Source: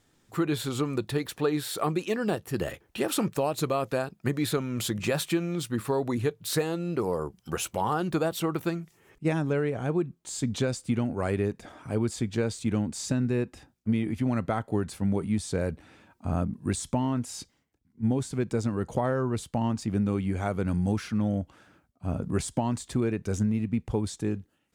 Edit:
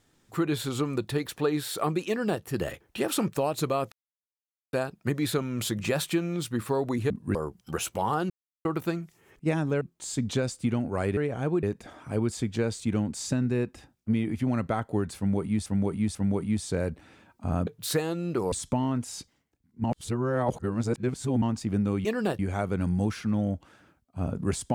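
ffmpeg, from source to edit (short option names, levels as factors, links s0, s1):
-filter_complex "[0:a]asplit=17[s0][s1][s2][s3][s4][s5][s6][s7][s8][s9][s10][s11][s12][s13][s14][s15][s16];[s0]atrim=end=3.92,asetpts=PTS-STARTPTS,afade=t=out:st=3.916:d=0.004:c=hsin,apad=pad_dur=0.81[s17];[s1]atrim=start=3.92:end=6.292,asetpts=PTS-STARTPTS,afade=t=in:d=0.004:c=hsin[s18];[s2]atrim=start=16.478:end=16.732[s19];[s3]atrim=start=7.138:end=8.09,asetpts=PTS-STARTPTS,afade=t=out:st=0.948:d=0.004:c=hsin[s20];[s4]atrim=start=8.09:end=8.44,asetpts=PTS-STARTPTS,volume=0[s21];[s5]atrim=start=8.44:end=9.602,asetpts=PTS-STARTPTS,afade=t=in:d=0.004:c=hsin[s22];[s6]atrim=start=10.058:end=11.422[s23];[s7]atrim=start=9.598:end=10.062[s24];[s8]atrim=start=11.418:end=15.452[s25];[s9]atrim=start=14.958:end=15.452[s26];[s10]atrim=start=14.958:end=16.482[s27];[s11]atrim=start=6.288:end=7.142[s28];[s12]atrim=start=16.728:end=18.052[s29];[s13]atrim=start=18.048:end=19.632,asetpts=PTS-STARTPTS,areverse[s30];[s14]atrim=start=19.628:end=20.262[s31];[s15]atrim=start=2.078:end=2.422[s32];[s16]atrim=start=20.258[s33];[s17][s18]concat=n=2:v=0:a=1[s34];[s34][s19]acrossfade=d=0.004:c1=hsin:c2=hsin[s35];[s20][s21][s22]concat=n=3:v=0:a=1[s36];[s35][s36]acrossfade=d=0.004:c1=hsin:c2=hsin[s37];[s37][s23]acrossfade=d=0.004:c1=hsin:c2=hsin[s38];[s38][s24]acrossfade=d=0.004:c1=hsin:c2=hsin[s39];[s39][s25]acrossfade=d=0.004:c1=hsin:c2=hsin[s40];[s40][s26]acrossfade=d=0.004:c1=hsin:c2=hsin[s41];[s41][s27]acrossfade=d=0.004:c1=hsin:c2=hsin[s42];[s42][s28]acrossfade=d=0.004:c1=hsin:c2=hsin[s43];[s43][s29]acrossfade=d=0.004:c1=hsin:c2=hsin[s44];[s44][s30]acrossfade=d=0.004:c1=hsin:c2=hsin[s45];[s45][s31]acrossfade=d=0.004:c1=hsin:c2=hsin[s46];[s46][s32]acrossfade=d=0.004:c1=hsin:c2=hsin[s47];[s47][s33]acrossfade=d=0.004:c1=hsin:c2=hsin"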